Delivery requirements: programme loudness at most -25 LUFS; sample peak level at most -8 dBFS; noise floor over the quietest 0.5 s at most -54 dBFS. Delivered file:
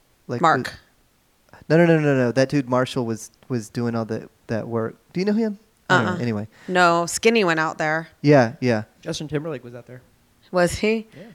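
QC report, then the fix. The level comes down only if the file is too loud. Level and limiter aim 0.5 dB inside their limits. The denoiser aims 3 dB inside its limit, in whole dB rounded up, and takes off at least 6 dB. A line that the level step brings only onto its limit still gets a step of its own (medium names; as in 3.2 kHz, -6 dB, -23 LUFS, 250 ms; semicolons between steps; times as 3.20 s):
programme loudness -21.5 LUFS: fail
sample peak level -3.0 dBFS: fail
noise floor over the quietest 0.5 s -61 dBFS: pass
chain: trim -4 dB; peak limiter -8.5 dBFS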